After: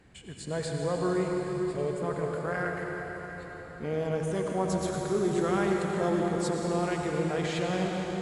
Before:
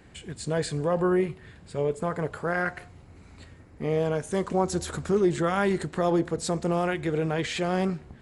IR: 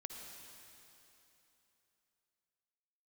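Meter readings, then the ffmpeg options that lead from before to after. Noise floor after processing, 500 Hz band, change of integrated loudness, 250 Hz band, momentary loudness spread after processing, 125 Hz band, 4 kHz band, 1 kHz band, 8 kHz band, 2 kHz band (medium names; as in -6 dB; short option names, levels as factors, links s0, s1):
-44 dBFS, -2.5 dB, -3.0 dB, -2.5 dB, 10 LU, -2.5 dB, -3.0 dB, -2.5 dB, -3.0 dB, -3.0 dB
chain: -filter_complex "[1:a]atrim=start_sample=2205,asetrate=27783,aresample=44100[s0];[0:a][s0]afir=irnorm=-1:irlink=0,volume=0.75"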